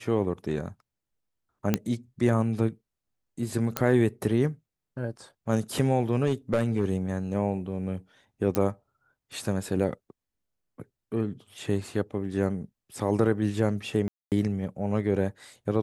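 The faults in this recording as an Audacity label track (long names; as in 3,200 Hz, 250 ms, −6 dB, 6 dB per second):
1.740000	1.740000	click −9 dBFS
3.770000	3.770000	click −8 dBFS
6.260000	6.850000	clipping −18 dBFS
8.550000	8.550000	click −11 dBFS
14.080000	14.320000	drop-out 238 ms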